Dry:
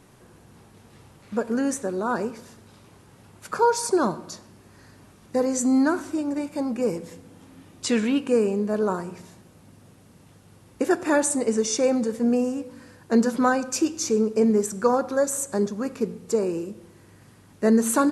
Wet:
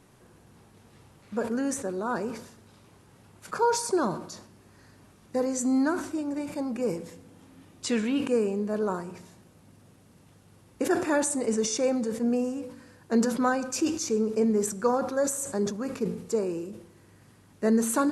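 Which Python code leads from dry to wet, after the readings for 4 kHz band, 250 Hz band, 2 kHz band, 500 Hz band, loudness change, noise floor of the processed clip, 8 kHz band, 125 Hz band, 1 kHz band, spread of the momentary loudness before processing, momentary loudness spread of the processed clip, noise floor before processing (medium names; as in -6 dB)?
-3.0 dB, -4.0 dB, -4.0 dB, -4.0 dB, -4.0 dB, -57 dBFS, -3.5 dB, -3.0 dB, -4.0 dB, 12 LU, 12 LU, -53 dBFS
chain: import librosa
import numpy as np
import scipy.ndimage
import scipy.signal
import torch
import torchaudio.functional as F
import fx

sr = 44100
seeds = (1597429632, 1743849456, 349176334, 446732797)

y = fx.sustainer(x, sr, db_per_s=90.0)
y = y * librosa.db_to_amplitude(-4.5)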